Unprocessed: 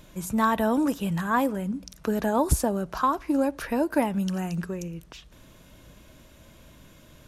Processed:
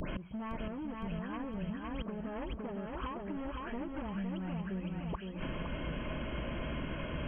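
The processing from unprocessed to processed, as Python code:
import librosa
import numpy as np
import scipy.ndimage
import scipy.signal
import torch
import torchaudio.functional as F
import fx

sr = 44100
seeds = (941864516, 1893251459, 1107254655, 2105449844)

p1 = fx.spec_delay(x, sr, highs='late', ms=218)
p2 = fx.env_lowpass_down(p1, sr, base_hz=820.0, full_db=-20.0)
p3 = fx.rider(p2, sr, range_db=3, speed_s=0.5)
p4 = p2 + F.gain(torch.from_numpy(p3), 0.5).numpy()
p5 = np.clip(10.0 ** (18.5 / 20.0) * p4, -1.0, 1.0) / 10.0 ** (18.5 / 20.0)
p6 = fx.gate_flip(p5, sr, shuts_db=-31.0, range_db=-26)
p7 = fx.brickwall_lowpass(p6, sr, high_hz=3300.0)
p8 = p7 + fx.echo_feedback(p7, sr, ms=511, feedback_pct=47, wet_db=-4, dry=0)
p9 = fx.band_squash(p8, sr, depth_pct=100)
y = F.gain(torch.from_numpy(p9), 5.5).numpy()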